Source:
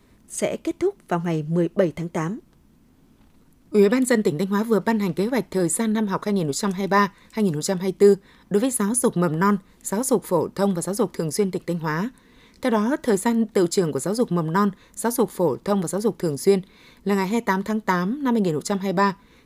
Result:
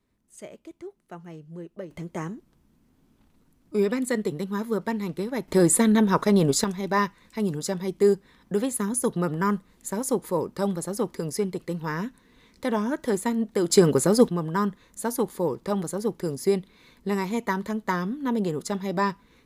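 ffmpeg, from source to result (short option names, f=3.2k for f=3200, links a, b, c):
-af "asetnsamples=n=441:p=0,asendcmd='1.91 volume volume -7dB;5.48 volume volume 3dB;6.64 volume volume -5dB;13.7 volume volume 4dB;14.29 volume volume -5dB',volume=-18dB"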